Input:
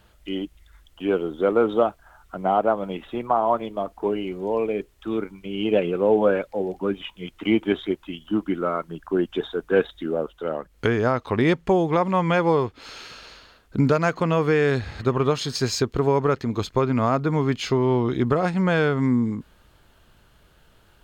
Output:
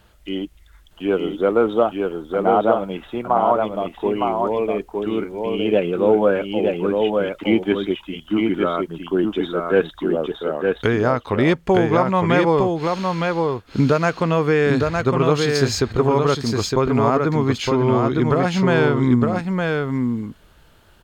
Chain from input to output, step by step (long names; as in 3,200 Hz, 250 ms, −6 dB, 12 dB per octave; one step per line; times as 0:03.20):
single-tap delay 911 ms −3.5 dB
level +2.5 dB